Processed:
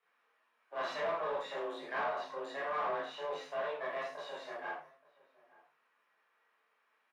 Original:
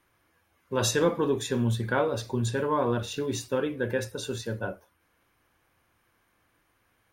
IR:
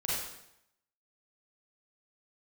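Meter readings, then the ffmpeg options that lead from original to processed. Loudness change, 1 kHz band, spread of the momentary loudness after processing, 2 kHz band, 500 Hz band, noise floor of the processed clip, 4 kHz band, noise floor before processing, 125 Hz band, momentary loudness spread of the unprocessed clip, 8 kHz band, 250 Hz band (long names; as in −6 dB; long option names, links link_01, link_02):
−10.0 dB, −4.0 dB, 8 LU, −6.0 dB, −10.0 dB, −76 dBFS, −12.0 dB, −71 dBFS, −33.5 dB, 9 LU, below −25 dB, −23.0 dB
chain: -filter_complex "[0:a]aeval=exprs='if(lt(val(0),0),0.251*val(0),val(0))':channel_layout=same,bass=frequency=250:gain=-14,treble=frequency=4000:gain=-3[link_01];[1:a]atrim=start_sample=2205,afade=type=out:start_time=0.3:duration=0.01,atrim=end_sample=13671,asetrate=79380,aresample=44100[link_02];[link_01][link_02]afir=irnorm=-1:irlink=0,asplit=2[link_03][link_04];[link_04]highpass=frequency=720:poles=1,volume=15dB,asoftclip=type=tanh:threshold=-16.5dB[link_05];[link_03][link_05]amix=inputs=2:normalize=0,lowpass=frequency=1300:poles=1,volume=-6dB,afreqshift=150,asoftclip=type=tanh:threshold=-19dB,highshelf=frequency=11000:gain=-3.5,acrossover=split=4500[link_06][link_07];[link_07]acompressor=threshold=-59dB:ratio=4:attack=1:release=60[link_08];[link_06][link_08]amix=inputs=2:normalize=0,asplit=2[link_09][link_10];[link_10]adelay=874.6,volume=-22dB,highshelf=frequency=4000:gain=-19.7[link_11];[link_09][link_11]amix=inputs=2:normalize=0,volume=-6.5dB"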